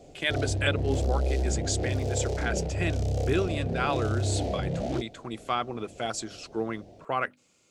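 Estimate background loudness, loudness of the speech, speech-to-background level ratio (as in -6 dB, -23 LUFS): -30.0 LUFS, -32.5 LUFS, -2.5 dB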